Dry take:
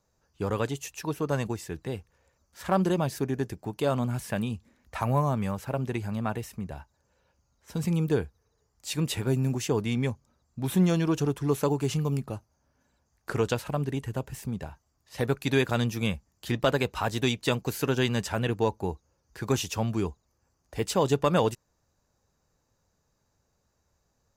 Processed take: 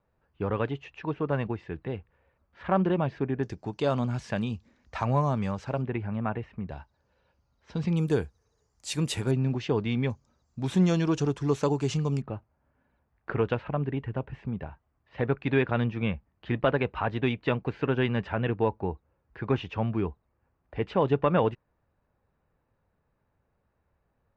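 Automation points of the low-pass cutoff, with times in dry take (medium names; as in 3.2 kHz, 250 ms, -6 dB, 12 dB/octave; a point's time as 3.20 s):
low-pass 24 dB/octave
2.9 kHz
from 3.43 s 6 kHz
from 5.82 s 2.6 kHz
from 6.69 s 4.5 kHz
from 7.97 s 10 kHz
from 9.31 s 4 kHz
from 10.10 s 7.1 kHz
from 12.22 s 2.7 kHz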